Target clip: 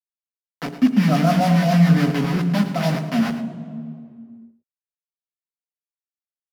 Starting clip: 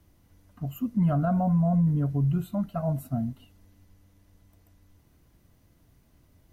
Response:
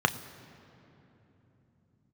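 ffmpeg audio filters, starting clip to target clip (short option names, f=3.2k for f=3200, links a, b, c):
-filter_complex "[0:a]lowpass=1.7k,equalizer=f=90:t=o:w=1.7:g=-12,acrusher=bits=5:mix=0:aa=0.000001,acrossover=split=580[a][b];[a]aeval=exprs='val(0)*(1-0.5/2+0.5/2*cos(2*PI*7.2*n/s))':c=same[c];[b]aeval=exprs='val(0)*(1-0.5/2-0.5/2*cos(2*PI*7.2*n/s))':c=same[d];[c][d]amix=inputs=2:normalize=0,aecho=1:1:109:0.237[e];[1:a]atrim=start_sample=2205,asetrate=74970,aresample=44100[f];[e][f]afir=irnorm=-1:irlink=0,volume=4.5dB"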